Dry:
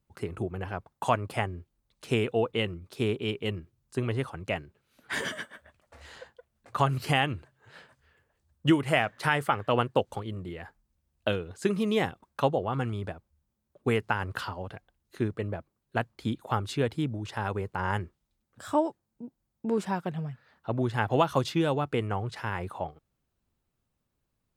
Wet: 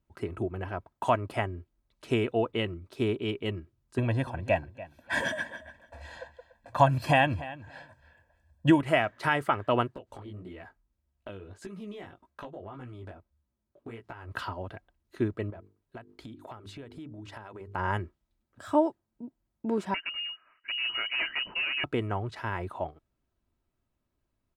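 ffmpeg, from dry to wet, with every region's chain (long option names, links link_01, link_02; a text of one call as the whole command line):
ffmpeg -i in.wav -filter_complex "[0:a]asettb=1/sr,asplit=3[link_01][link_02][link_03];[link_01]atrim=end=3.984[link_04];[link_02]atrim=start=3.98:end=8.81,asetpts=PTS-STARTPTS,afade=type=in:duration=0.004:curve=qsin,afade=type=out:start_time=4.826:duration=0.004:curve=qsin,equalizer=frequency=480:width=3.3:gain=12.5,aecho=1:1:1.2:0.94,atrim=end_sample=213003,asplit=2[link_05][link_06];[link_06]adelay=289,lowpass=frequency=4500:poles=1,volume=-16.5dB,asplit=2[link_07][link_08];[link_08]adelay=289,lowpass=frequency=4500:poles=1,volume=0.18[link_09];[link_05][link_07][link_09]amix=inputs=3:normalize=0,atrim=end_sample=213003[link_10];[link_03]atrim=start=8.806[link_11];[link_04][link_10]acrossfade=duration=0.004:curve1=hsin:curve2=qsin[link_12];[link_12][link_11]acrossfade=duration=0.004:curve1=qsin:curve2=hsin,asettb=1/sr,asplit=3[link_13][link_14][link_15];[link_13]atrim=end=9.954[link_16];[link_14]atrim=start=9.95:end=14.32,asetpts=PTS-STARTPTS,afade=type=in:duration=0.004:curve=qsin,afade=type=out:start_time=4.366:duration=0.004:curve=qsin,acompressor=threshold=-34dB:ratio=12:attack=3.2:release=140:knee=1:detection=peak,flanger=delay=15.5:depth=5.4:speed=1.7[link_17];[link_15]atrim=start=14.316[link_18];[link_16][link_17]acrossfade=duration=0.004:curve1=hsin:curve2=qsin[link_19];[link_19][link_18]acrossfade=duration=0.004:curve1=qsin:curve2=hsin,asettb=1/sr,asplit=3[link_20][link_21][link_22];[link_20]atrim=end=15.504[link_23];[link_21]atrim=start=15.5:end=17.75,asetpts=PTS-STARTPTS,afade=type=in:duration=0.004:curve=qsin,afade=type=out:start_time=2.246:duration=0.004:curve=qsin,bandreject=frequency=50:width_type=h:width=6,bandreject=frequency=100:width_type=h:width=6,bandreject=frequency=150:width_type=h:width=6,bandreject=frequency=200:width_type=h:width=6,bandreject=frequency=250:width_type=h:width=6,bandreject=frequency=300:width_type=h:width=6,bandreject=frequency=350:width_type=h:width=6,bandreject=frequency=400:width_type=h:width=6,bandreject=frequency=450:width_type=h:width=6,acompressor=threshold=-39dB:ratio=12:attack=3.2:release=140:knee=1:detection=peak[link_24];[link_22]atrim=start=17.746[link_25];[link_23][link_24]acrossfade=duration=0.004:curve1=hsin:curve2=qsin[link_26];[link_26][link_25]acrossfade=duration=0.004:curve1=qsin:curve2=hsin,asettb=1/sr,asplit=3[link_27][link_28][link_29];[link_27]atrim=end=19.944[link_30];[link_28]atrim=start=19.94:end=21.84,asetpts=PTS-STARTPTS,afade=type=in:duration=0.004:curve=qsin,afade=type=out:start_time=1.896:duration=0.004:curve=qsin,volume=25.5dB,asoftclip=hard,volume=-25.5dB,lowpass=frequency=2600:width_type=q:width=0.5098,lowpass=frequency=2600:width_type=q:width=0.6013,lowpass=frequency=2600:width_type=q:width=0.9,lowpass=frequency=2600:width_type=q:width=2.563,afreqshift=-3000[link_31];[link_29]atrim=start=21.836[link_32];[link_30][link_31]acrossfade=duration=0.004:curve1=hsin:curve2=qsin[link_33];[link_33][link_32]acrossfade=duration=0.004:curve1=qsin:curve2=hsin,highshelf=frequency=3800:gain=-8.5,aecho=1:1:3.1:0.37" out.wav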